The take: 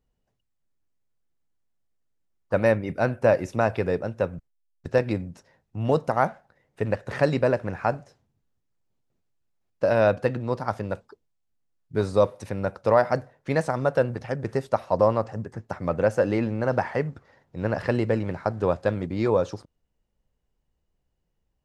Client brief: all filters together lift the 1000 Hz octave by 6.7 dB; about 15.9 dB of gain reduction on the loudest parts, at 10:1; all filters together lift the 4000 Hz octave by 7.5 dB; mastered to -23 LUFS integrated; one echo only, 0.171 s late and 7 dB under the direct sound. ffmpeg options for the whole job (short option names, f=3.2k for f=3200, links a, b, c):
-af "equalizer=f=1k:t=o:g=8.5,equalizer=f=4k:t=o:g=8.5,acompressor=threshold=-27dB:ratio=10,aecho=1:1:171:0.447,volume=10dB"